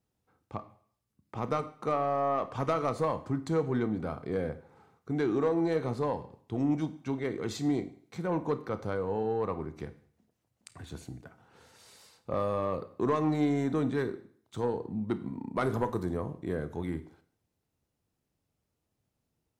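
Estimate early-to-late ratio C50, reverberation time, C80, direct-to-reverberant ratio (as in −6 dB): 14.5 dB, 0.55 s, 18.0 dB, 11.0 dB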